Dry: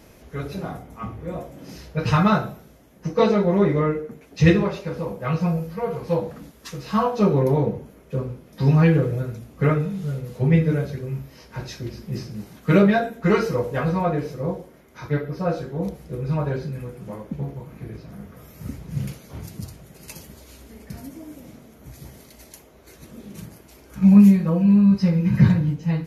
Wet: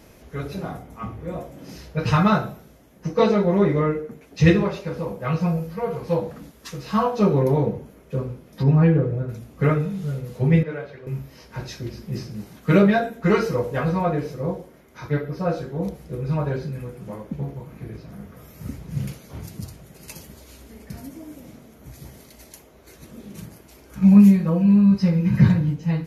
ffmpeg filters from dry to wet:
ffmpeg -i in.wav -filter_complex "[0:a]asplit=3[link_01][link_02][link_03];[link_01]afade=type=out:start_time=8.62:duration=0.02[link_04];[link_02]lowpass=frequency=1100:poles=1,afade=type=in:start_time=8.62:duration=0.02,afade=type=out:start_time=9.28:duration=0.02[link_05];[link_03]afade=type=in:start_time=9.28:duration=0.02[link_06];[link_04][link_05][link_06]amix=inputs=3:normalize=0,asettb=1/sr,asplit=3[link_07][link_08][link_09];[link_07]atrim=end=10.634[link_10];[link_08]atrim=start=10.63:end=11.07,asetpts=PTS-STARTPTS,afade=type=in:duration=0.004:curve=qsin,afade=type=out:start_time=0.436:duration=0.004:curve=qsin,acrossover=split=450 3500:gain=0.158 1 0.0891[link_11][link_12][link_13];[link_11][link_12][link_13]amix=inputs=3:normalize=0[link_14];[link_09]atrim=start=11.066[link_15];[link_10][link_14]acrossfade=duration=0.004:curve1=hsin:curve2=qsin[link_16];[link_16][link_15]acrossfade=duration=0.004:curve1=qsin:curve2=hsin" out.wav

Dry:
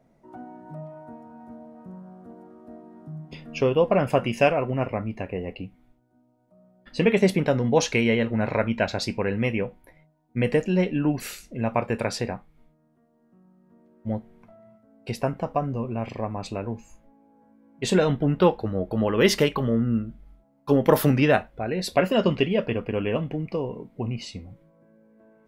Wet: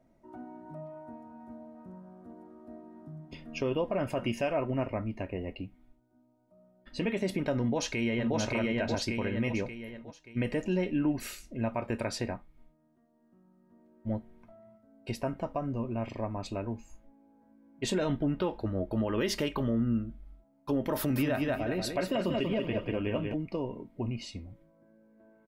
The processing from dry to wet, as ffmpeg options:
ffmpeg -i in.wav -filter_complex "[0:a]asplit=2[link_01][link_02];[link_02]afade=type=in:start_time=7.6:duration=0.01,afade=type=out:start_time=8.36:duration=0.01,aecho=0:1:580|1160|1740|2320|2900:0.944061|0.377624|0.15105|0.0604199|0.024168[link_03];[link_01][link_03]amix=inputs=2:normalize=0,asettb=1/sr,asplit=3[link_04][link_05][link_06];[link_04]atrim=end=20.974[link_07];[link_05]atrim=start=20.97:end=23.34,asetpts=PTS-STARTPTS,afade=type=in:duration=0.004:curve=qsin,afade=type=out:start_time=2.366:duration=0.004:curve=qsin,aecho=1:1:187|374|561|748:0.501|0.165|0.0546|0.018,atrim=end_sample=104517[link_08];[link_06]atrim=start=23.336[link_09];[link_07][link_08]acrossfade=duration=0.004:curve1=hsin:curve2=qsin[link_10];[link_10][link_09]acrossfade=duration=0.004:curve1=qsin:curve2=hsin,lowshelf=frequency=200:gain=4,aecho=1:1:3.2:0.4,alimiter=limit=-15dB:level=0:latency=1:release=84,volume=-6dB" out.wav

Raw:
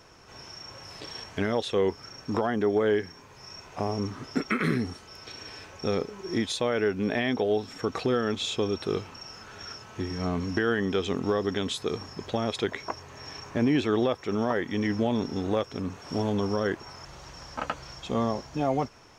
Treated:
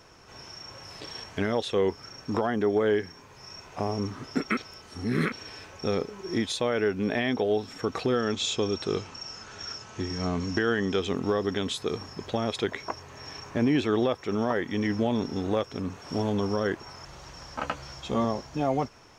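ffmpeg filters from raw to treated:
ffmpeg -i in.wav -filter_complex "[0:a]asettb=1/sr,asplit=3[link_01][link_02][link_03];[link_01]atrim=end=8.174[link_04];[link_02]atrim=start=8.17:end=11,asetpts=PTS-STARTPTS,afade=type=in:duration=0.004:curve=qsin,afade=type=out:start_time=2.826:duration=0.004:curve=qsin,lowpass=frequency=7100:width_type=q:width=1.8[link_05];[link_03]atrim=start=10.996[link_06];[link_04][link_05]acrossfade=duration=0.004:curve1=hsin:curve2=qsin[link_07];[link_07][link_06]acrossfade=duration=0.004:curve1=qsin:curve2=hsin,asettb=1/sr,asplit=3[link_08][link_09][link_10];[link_08]atrim=end=17.594[link_11];[link_09]atrim=start=17.59:end=18.25,asetpts=PTS-STARTPTS,afade=type=in:duration=0.004:curve=qsin,afade=type=out:start_time=0.656:duration=0.004:curve=qsin,asplit=2[link_12][link_13];[link_13]adelay=14,volume=-6.5dB[link_14];[link_12][link_14]amix=inputs=2:normalize=0,atrim=end_sample=29106[link_15];[link_10]atrim=start=18.246[link_16];[link_11][link_15]acrossfade=duration=0.004:curve1=hsin:curve2=qsin[link_17];[link_17][link_16]acrossfade=duration=0.004:curve1=qsin:curve2=hsin,asplit=3[link_18][link_19][link_20];[link_18]atrim=end=4.572[link_21];[link_19]atrim=start=4.568:end=5.322,asetpts=PTS-STARTPTS,areverse[link_22];[link_20]atrim=start=5.318[link_23];[link_21][link_22]acrossfade=duration=0.004:curve1=hsin:curve2=hsin[link_24];[link_24][link_23]acrossfade=duration=0.004:curve1=hsin:curve2=hsin" out.wav

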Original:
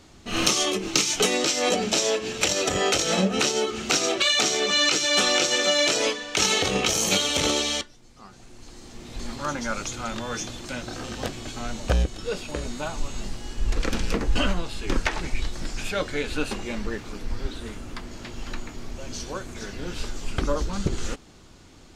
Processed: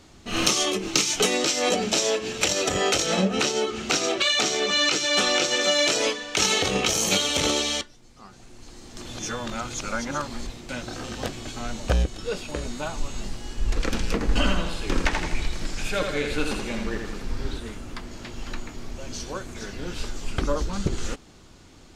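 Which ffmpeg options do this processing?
ffmpeg -i in.wav -filter_complex "[0:a]asettb=1/sr,asplit=3[link_01][link_02][link_03];[link_01]atrim=end=3.064[link_04];[link_02]atrim=start=3.06:end=5.61,asetpts=PTS-STARTPTS,afade=type=in:duration=0.004:curve=qsin,afade=type=out:start_time=2.546:duration=0.004:curve=qsin,highshelf=frequency=7200:gain=-5.5[link_05];[link_03]atrim=start=5.606[link_06];[link_04][link_05]acrossfade=duration=0.004:curve1=hsin:curve2=qsin[link_07];[link_07][link_06]acrossfade=duration=0.004:curve1=qsin:curve2=hsin,asettb=1/sr,asplit=3[link_08][link_09][link_10];[link_08]atrim=end=14.154[link_11];[link_09]atrim=start=14.15:end=17.59,asetpts=PTS-STARTPTS,afade=type=in:duration=0.004:curve=qsin,afade=type=out:start_time=3.436:duration=0.004:curve=qsin,aecho=1:1:82|164|246|328|410|492:0.562|0.287|0.146|0.0746|0.038|0.0194,atrim=end_sample=151704[link_12];[link_10]atrim=start=17.586[link_13];[link_11][link_12]acrossfade=duration=0.004:curve1=hsin:curve2=qsin[link_14];[link_14][link_13]acrossfade=duration=0.004:curve1=qsin:curve2=hsin,asplit=3[link_15][link_16][link_17];[link_15]atrim=end=8.972[link_18];[link_16]atrim=start=8.968:end=10.692,asetpts=PTS-STARTPTS,areverse[link_19];[link_17]atrim=start=10.688[link_20];[link_18][link_19]acrossfade=duration=0.004:curve1=hsin:curve2=hsin[link_21];[link_21][link_20]acrossfade=duration=0.004:curve1=hsin:curve2=hsin" out.wav

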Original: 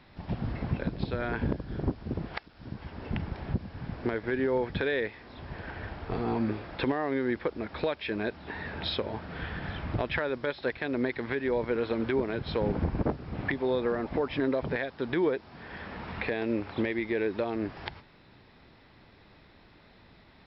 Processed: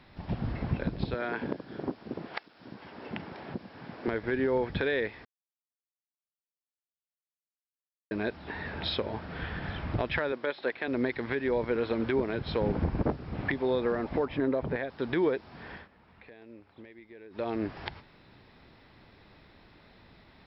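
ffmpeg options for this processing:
ffmpeg -i in.wav -filter_complex "[0:a]asettb=1/sr,asplit=3[link_01][link_02][link_03];[link_01]atrim=end=1.144[link_04];[link_02]atrim=start=1.14:end=4.08,asetpts=PTS-STARTPTS,afade=type=in:duration=0.004:curve=qsin,afade=type=out:start_time=2.936:duration=0.004:curve=qsin,highpass=250[link_05];[link_03]atrim=start=4.076[link_06];[link_04][link_05]acrossfade=duration=0.004:curve1=hsin:curve2=qsin[link_07];[link_07][link_06]acrossfade=duration=0.004:curve1=qsin:curve2=hsin,asettb=1/sr,asplit=3[link_08][link_09][link_10];[link_08]atrim=end=10.324[link_11];[link_09]atrim=start=10.32:end=10.88,asetpts=PTS-STARTPTS,afade=type=in:duration=0.004:curve=qsin,afade=type=out:start_time=0.556:duration=0.004:curve=qsin,highpass=260,lowpass=4300[link_12];[link_10]atrim=start=10.876[link_13];[link_11][link_12]acrossfade=duration=0.004:curve1=hsin:curve2=qsin[link_14];[link_14][link_13]acrossfade=duration=0.004:curve1=qsin:curve2=hsin,asettb=1/sr,asplit=3[link_15][link_16][link_17];[link_15]atrim=end=14.254[link_18];[link_16]atrim=start=14.25:end=14.9,asetpts=PTS-STARTPTS,afade=type=in:duration=0.004:curve=qsin,afade=type=out:start_time=0.646:duration=0.004:curve=qsin,highshelf=frequency=2500:gain=-10.5[link_19];[link_17]atrim=start=14.896[link_20];[link_18][link_19]acrossfade=duration=0.004:curve1=hsin:curve2=qsin[link_21];[link_21][link_20]acrossfade=duration=0.004:curve1=qsin:curve2=hsin,asplit=5[link_22][link_23][link_24][link_25][link_26];[link_22]atrim=end=5.25,asetpts=PTS-STARTPTS,afade=type=out:start_time=5.246:duration=0.004:curve=hsin[link_27];[link_23]atrim=start=5.25:end=8.11,asetpts=PTS-STARTPTS,volume=0[link_28];[link_24]atrim=start=8.11:end=15.88,asetpts=PTS-STARTPTS,afade=type=in:duration=0.004:curve=hsin,afade=type=out:start_time=7.59:duration=0.18:silence=0.0944061[link_29];[link_25]atrim=start=15.88:end=17.3,asetpts=PTS-STARTPTS,volume=-20.5dB[link_30];[link_26]atrim=start=17.3,asetpts=PTS-STARTPTS,afade=type=in:duration=0.18:silence=0.0944061[link_31];[link_27][link_28][link_29][link_30][link_31]concat=n=5:v=0:a=1" out.wav

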